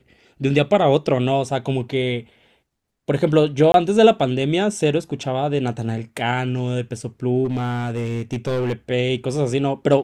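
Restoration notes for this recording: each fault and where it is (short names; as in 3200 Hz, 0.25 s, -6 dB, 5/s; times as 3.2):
3.72–3.74 gap 22 ms
7.44–8.73 clipped -18.5 dBFS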